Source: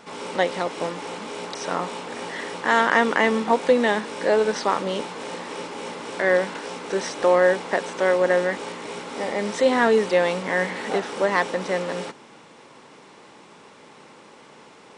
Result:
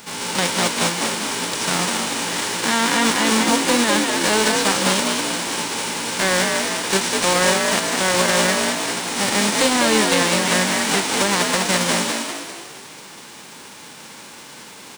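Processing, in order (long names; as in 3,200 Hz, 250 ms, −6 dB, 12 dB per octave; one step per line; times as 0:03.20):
spectral envelope flattened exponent 0.3
brickwall limiter −14 dBFS, peak gain reduction 11.5 dB
echo with shifted repeats 200 ms, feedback 49%, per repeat +52 Hz, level −3.5 dB
level +6.5 dB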